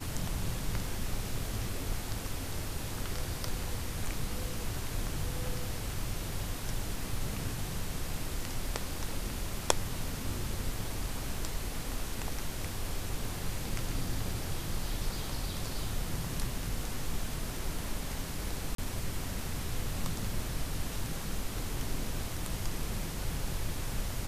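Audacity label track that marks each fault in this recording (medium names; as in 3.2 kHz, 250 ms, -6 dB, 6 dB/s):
18.750000	18.780000	dropout 33 ms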